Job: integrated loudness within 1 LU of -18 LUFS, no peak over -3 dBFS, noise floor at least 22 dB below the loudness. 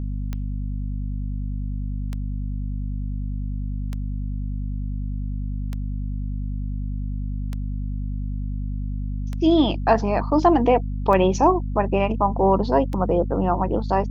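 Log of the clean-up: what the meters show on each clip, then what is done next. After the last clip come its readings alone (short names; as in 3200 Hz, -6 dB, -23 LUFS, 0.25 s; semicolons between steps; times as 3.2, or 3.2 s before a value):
clicks 8; hum 50 Hz; harmonics up to 250 Hz; hum level -24 dBFS; loudness -24.0 LUFS; peak -3.5 dBFS; loudness target -18.0 LUFS
-> de-click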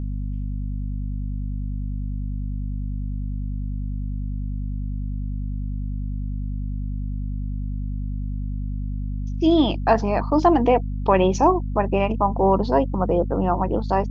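clicks 0; hum 50 Hz; harmonics up to 250 Hz; hum level -24 dBFS
-> notches 50/100/150/200/250 Hz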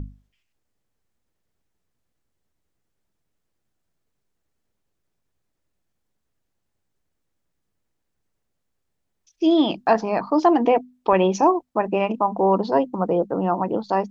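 hum none; loudness -20.5 LUFS; peak -4.5 dBFS; loudness target -18.0 LUFS
-> gain +2.5 dB; limiter -3 dBFS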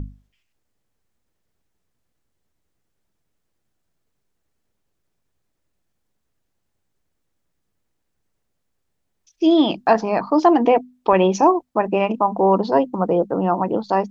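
loudness -18.5 LUFS; peak -3.0 dBFS; noise floor -74 dBFS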